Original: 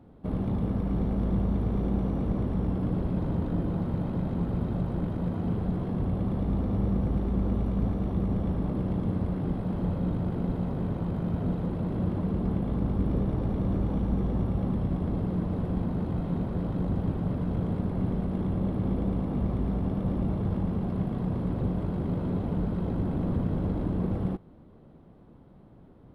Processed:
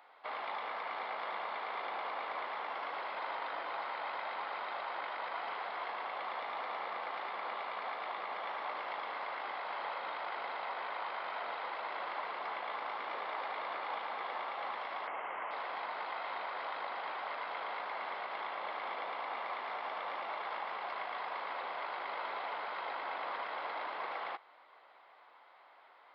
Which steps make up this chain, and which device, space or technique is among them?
15.07–15.51 steep low-pass 3100 Hz 96 dB/oct; musical greeting card (downsampling 11025 Hz; HPF 870 Hz 24 dB/oct; bell 2100 Hz +8 dB 0.3 oct); gain +9.5 dB

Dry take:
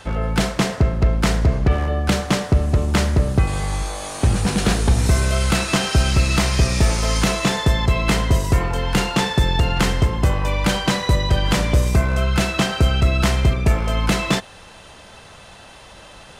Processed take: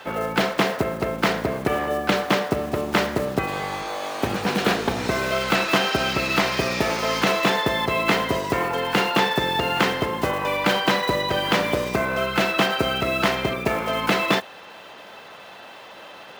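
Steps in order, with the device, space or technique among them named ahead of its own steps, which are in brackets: early digital voice recorder (BPF 290–3600 Hz; block floating point 5-bit); gain +2.5 dB

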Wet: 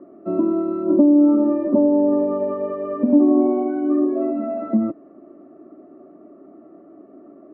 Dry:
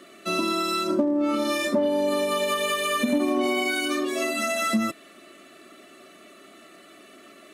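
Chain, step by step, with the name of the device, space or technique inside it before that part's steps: under water (LPF 890 Hz 24 dB/oct; bell 300 Hz +8 dB 0.46 oct); gain +3.5 dB

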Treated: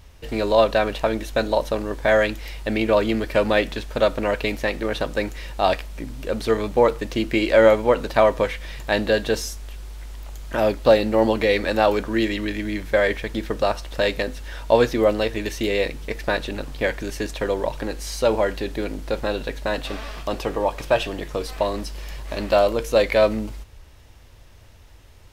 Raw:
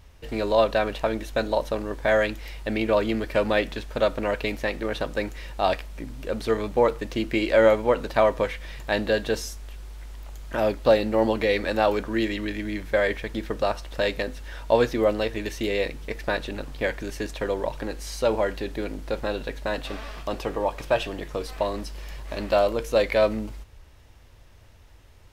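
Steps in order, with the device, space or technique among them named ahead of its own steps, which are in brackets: exciter from parts (in parallel at -12 dB: HPF 2200 Hz 12 dB/oct + soft clip -36 dBFS, distortion -6 dB); on the sum: gain +3.5 dB

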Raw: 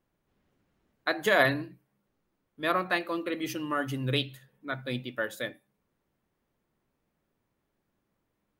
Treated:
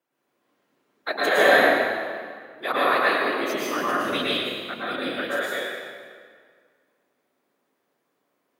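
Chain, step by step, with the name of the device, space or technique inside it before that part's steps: whispering ghost (whisperiser; HPF 370 Hz 12 dB/oct; reverb RT60 1.9 s, pre-delay 0.102 s, DRR -7.5 dB)

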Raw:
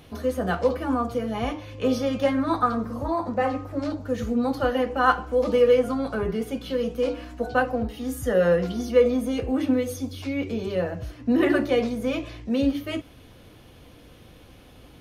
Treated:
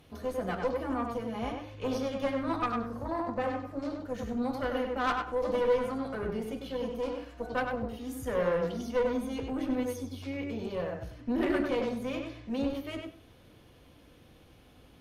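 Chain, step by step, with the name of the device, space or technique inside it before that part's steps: rockabilly slapback (tube stage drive 17 dB, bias 0.65; tape echo 97 ms, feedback 20%, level -3 dB, low-pass 3300 Hz); gain -5.5 dB

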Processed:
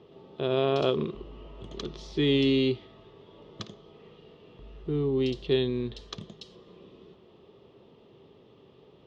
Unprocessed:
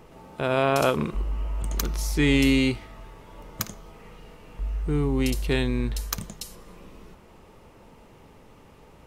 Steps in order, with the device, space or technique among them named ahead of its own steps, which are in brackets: guitar cabinet (speaker cabinet 110–4400 Hz, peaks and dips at 130 Hz +4 dB, 390 Hz +10 dB, 890 Hz -6 dB, 1500 Hz -9 dB, 2200 Hz -8 dB, 3400 Hz +9 dB); gain -5.5 dB

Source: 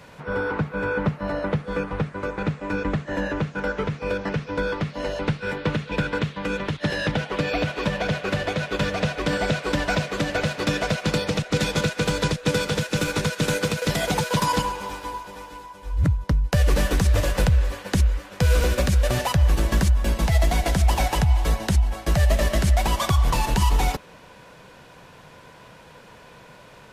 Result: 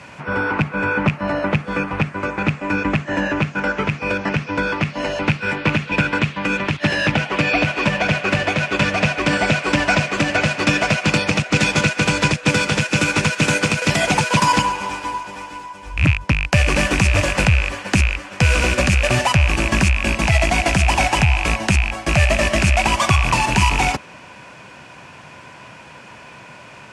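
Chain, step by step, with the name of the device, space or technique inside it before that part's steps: car door speaker with a rattle (rattling part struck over -20 dBFS, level -18 dBFS; speaker cabinet 88–9400 Hz, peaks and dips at 170 Hz -4 dB, 470 Hz -9 dB, 2500 Hz +6 dB, 3800 Hz -6 dB); gain +7.5 dB

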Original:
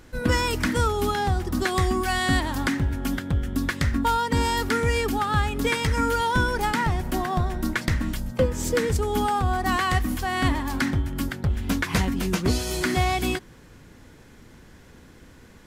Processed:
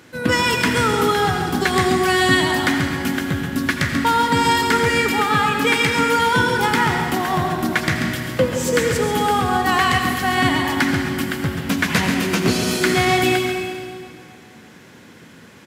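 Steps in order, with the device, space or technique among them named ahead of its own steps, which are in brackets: PA in a hall (HPF 110 Hz 24 dB/oct; bell 2500 Hz +4 dB 1.4 oct; echo 0.138 s -8.5 dB; reverb RT60 2.1 s, pre-delay 74 ms, DRR 3.5 dB); 5.24–6.18 HPF 110 Hz; gain +4 dB

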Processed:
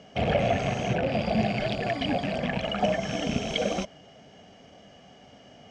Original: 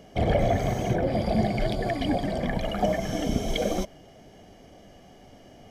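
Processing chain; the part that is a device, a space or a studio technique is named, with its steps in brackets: car door speaker with a rattle (rattling part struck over -29 dBFS, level -28 dBFS; speaker cabinet 88–7300 Hz, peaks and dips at 100 Hz -4 dB, 340 Hz -8 dB, 1400 Hz +4 dB, 2800 Hz +6 dB)

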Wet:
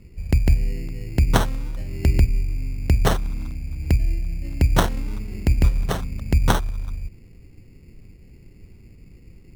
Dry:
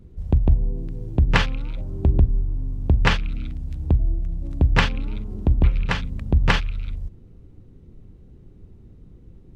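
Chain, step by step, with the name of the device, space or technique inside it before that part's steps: crushed at another speed (playback speed 0.8×; sample-and-hold 23×; playback speed 1.25×)

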